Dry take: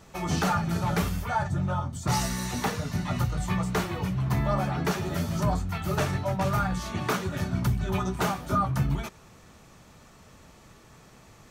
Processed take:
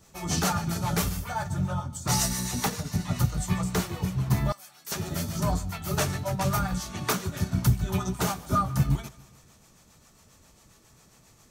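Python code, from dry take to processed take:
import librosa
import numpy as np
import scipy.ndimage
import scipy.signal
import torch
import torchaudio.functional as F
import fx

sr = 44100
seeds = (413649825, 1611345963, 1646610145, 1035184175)

y = fx.bass_treble(x, sr, bass_db=2, treble_db=10)
y = fx.echo_feedback(y, sr, ms=146, feedback_pct=57, wet_db=-17.5)
y = fx.harmonic_tremolo(y, sr, hz=7.4, depth_pct=50, crossover_hz=450.0)
y = fx.differentiator(y, sr, at=(4.52, 4.92))
y = fx.upward_expand(y, sr, threshold_db=-37.0, expansion=1.5)
y = y * librosa.db_to_amplitude(3.5)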